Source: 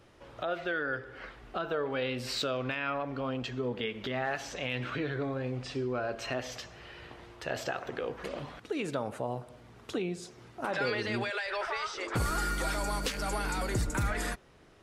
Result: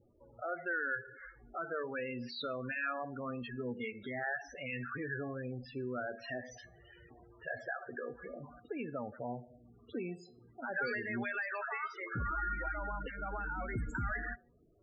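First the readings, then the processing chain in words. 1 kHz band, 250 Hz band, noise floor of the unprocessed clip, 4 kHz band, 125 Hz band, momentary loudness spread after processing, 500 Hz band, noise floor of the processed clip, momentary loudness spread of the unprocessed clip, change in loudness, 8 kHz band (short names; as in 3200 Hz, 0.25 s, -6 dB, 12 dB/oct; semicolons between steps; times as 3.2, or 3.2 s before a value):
-5.0 dB, -6.0 dB, -56 dBFS, -13.5 dB, -7.5 dB, 12 LU, -7.5 dB, -64 dBFS, 11 LU, -5.5 dB, -22.0 dB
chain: dynamic EQ 1700 Hz, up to +7 dB, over -50 dBFS, Q 1.6; loudest bins only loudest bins 16; resonator 240 Hz, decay 0.31 s, harmonics odd, mix 70%; gain +3 dB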